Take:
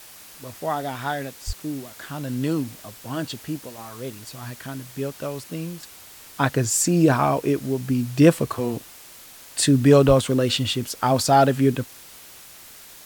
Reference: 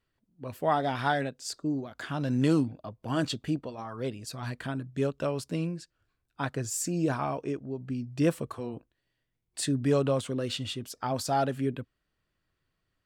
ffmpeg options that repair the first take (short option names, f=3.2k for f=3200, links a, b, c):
-filter_complex "[0:a]asplit=3[a][b][c];[a]afade=t=out:st=1.46:d=0.02[d];[b]highpass=f=140:w=0.5412,highpass=f=140:w=1.3066,afade=t=in:st=1.46:d=0.02,afade=t=out:st=1.58:d=0.02[e];[c]afade=t=in:st=1.58:d=0.02[f];[d][e][f]amix=inputs=3:normalize=0,asplit=3[g][h][i];[g]afade=t=out:st=10.07:d=0.02[j];[h]highpass=f=140:w=0.5412,highpass=f=140:w=1.3066,afade=t=in:st=10.07:d=0.02,afade=t=out:st=10.19:d=0.02[k];[i]afade=t=in:st=10.19:d=0.02[l];[j][k][l]amix=inputs=3:normalize=0,afwtdn=0.0063,asetnsamples=n=441:p=0,asendcmd='5.83 volume volume -11dB',volume=0dB"